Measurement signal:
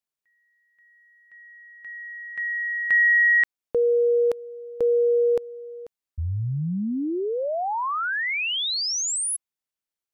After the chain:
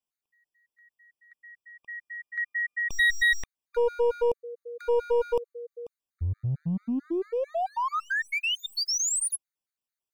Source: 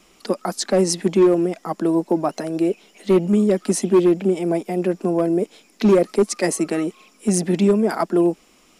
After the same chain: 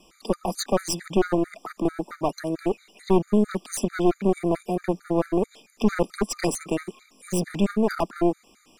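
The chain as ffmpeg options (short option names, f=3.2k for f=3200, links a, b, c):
-af "aeval=exprs='clip(val(0),-1,0.0596)':c=same,afftfilt=real='re*gt(sin(2*PI*4.5*pts/sr)*(1-2*mod(floor(b*sr/1024/1200),2)),0)':imag='im*gt(sin(2*PI*4.5*pts/sr)*(1-2*mod(floor(b*sr/1024/1200),2)),0)':win_size=1024:overlap=0.75"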